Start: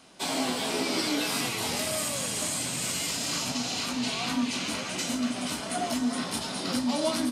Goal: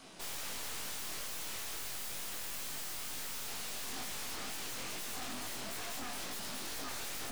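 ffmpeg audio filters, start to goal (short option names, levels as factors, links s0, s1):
-af "aeval=exprs='(mod(28.2*val(0)+1,2)-1)/28.2':c=same,aeval=exprs='(tanh(200*val(0)+0.7)-tanh(0.7))/200':c=same,flanger=delay=18.5:depth=5.5:speed=2.2,volume=2.37"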